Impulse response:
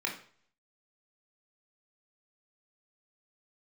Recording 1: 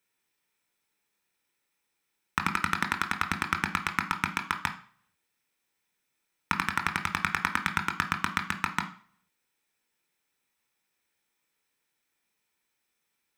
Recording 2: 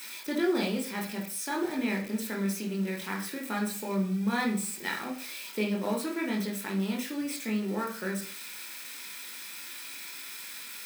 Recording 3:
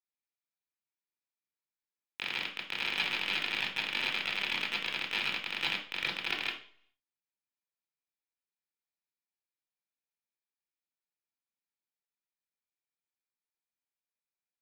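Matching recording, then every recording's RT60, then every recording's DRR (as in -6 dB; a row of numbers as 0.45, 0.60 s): 2; 0.50, 0.50, 0.50 s; 4.5, -1.5, -6.5 dB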